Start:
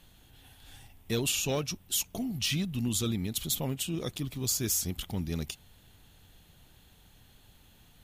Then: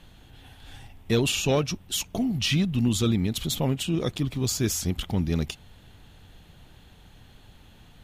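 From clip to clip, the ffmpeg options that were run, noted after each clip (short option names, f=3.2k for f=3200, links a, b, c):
-af "aemphasis=mode=reproduction:type=50kf,volume=8dB"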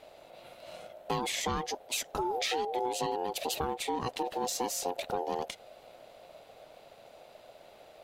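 -af "acompressor=threshold=-26dB:ratio=6,aeval=exprs='val(0)*sin(2*PI*620*n/s)':c=same"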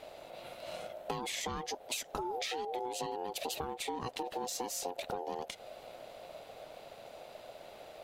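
-af "acompressor=threshold=-38dB:ratio=6,volume=3.5dB"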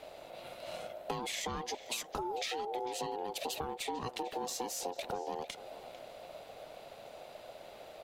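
-filter_complex "[0:a]acrossover=split=160|6400[a][b][c];[b]aecho=1:1:448:0.178[d];[c]asoftclip=type=tanh:threshold=-36.5dB[e];[a][d][e]amix=inputs=3:normalize=0"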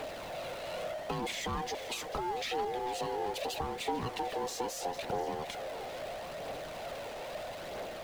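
-af "aeval=exprs='val(0)+0.5*0.0126*sgn(val(0))':c=same,aphaser=in_gain=1:out_gain=1:delay=2.5:decay=0.29:speed=0.77:type=triangular,highshelf=f=5k:g=-9"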